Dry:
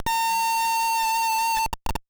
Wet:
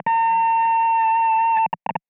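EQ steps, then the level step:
elliptic band-pass filter 170–2,400 Hz, stop band 40 dB
high-frequency loss of the air 220 metres
phaser with its sweep stopped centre 1,300 Hz, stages 6
+8.5 dB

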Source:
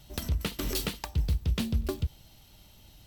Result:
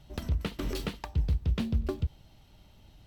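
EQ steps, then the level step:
low-pass filter 2,000 Hz 6 dB per octave
0.0 dB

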